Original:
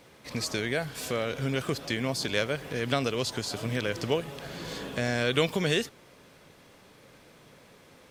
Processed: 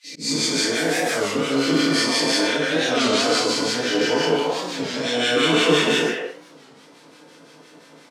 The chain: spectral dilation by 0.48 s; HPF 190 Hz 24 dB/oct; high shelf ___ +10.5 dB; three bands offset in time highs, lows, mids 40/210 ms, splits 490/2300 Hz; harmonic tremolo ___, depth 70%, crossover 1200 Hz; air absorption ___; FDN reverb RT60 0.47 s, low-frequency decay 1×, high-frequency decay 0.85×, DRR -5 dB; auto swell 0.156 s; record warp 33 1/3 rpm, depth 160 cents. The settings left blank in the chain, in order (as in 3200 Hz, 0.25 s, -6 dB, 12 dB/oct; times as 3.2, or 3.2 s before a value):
5800 Hz, 5.8 Hz, 80 m